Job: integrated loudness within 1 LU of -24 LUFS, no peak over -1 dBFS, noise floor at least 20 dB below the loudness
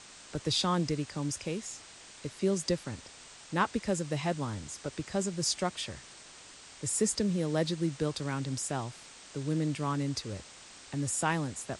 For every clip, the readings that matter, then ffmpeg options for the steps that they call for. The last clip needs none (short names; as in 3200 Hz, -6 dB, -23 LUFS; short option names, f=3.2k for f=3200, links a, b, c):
noise floor -52 dBFS; noise floor target -53 dBFS; loudness -32.5 LUFS; peak -16.0 dBFS; loudness target -24.0 LUFS
-> -af "afftdn=nr=6:nf=-52"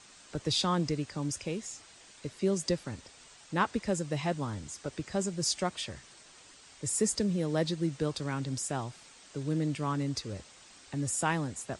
noise floor -56 dBFS; loudness -32.5 LUFS; peak -16.0 dBFS; loudness target -24.0 LUFS
-> -af "volume=8.5dB"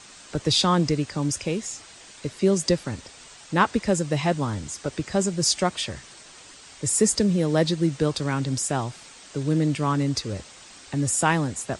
loudness -24.0 LUFS; peak -7.5 dBFS; noise floor -47 dBFS